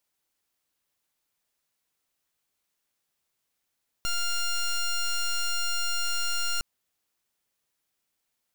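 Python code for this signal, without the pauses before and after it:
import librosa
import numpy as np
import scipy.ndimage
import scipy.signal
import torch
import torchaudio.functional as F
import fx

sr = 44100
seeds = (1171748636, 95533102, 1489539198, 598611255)

y = fx.pulse(sr, length_s=2.56, hz=1400.0, level_db=-26.5, duty_pct=10)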